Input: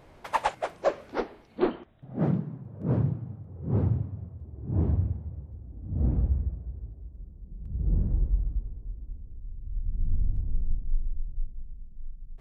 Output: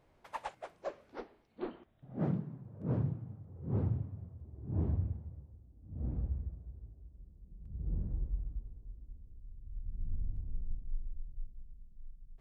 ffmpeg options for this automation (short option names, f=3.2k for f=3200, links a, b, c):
-af "volume=-0.5dB,afade=t=in:st=1.65:d=0.47:silence=0.421697,afade=t=out:st=5.15:d=0.6:silence=0.316228,afade=t=in:st=5.75:d=0.44:silence=0.446684"